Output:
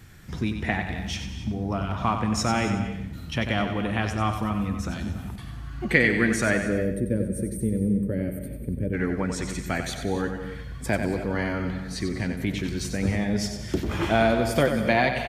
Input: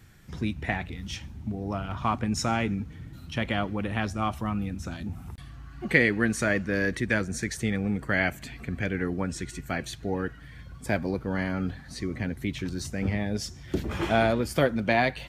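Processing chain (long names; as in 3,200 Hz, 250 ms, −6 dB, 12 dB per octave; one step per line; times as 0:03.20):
gain on a spectral selection 0:06.61–0:08.93, 610–8,200 Hz −24 dB
in parallel at −2 dB: downward compressor, threshold −34 dBFS, peak gain reduction 17.5 dB
on the sum: repeating echo 93 ms, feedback 36%, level −8 dB
reverb whose tail is shaped and stops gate 300 ms rising, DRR 11 dB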